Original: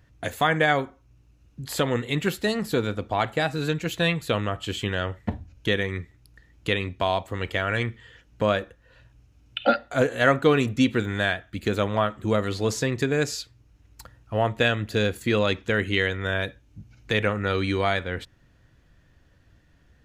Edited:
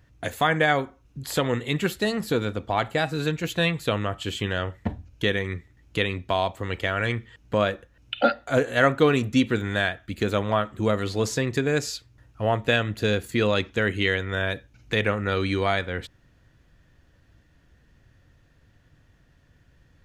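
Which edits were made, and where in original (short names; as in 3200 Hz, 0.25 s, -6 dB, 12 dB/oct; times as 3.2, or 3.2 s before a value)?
shrink pauses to 25%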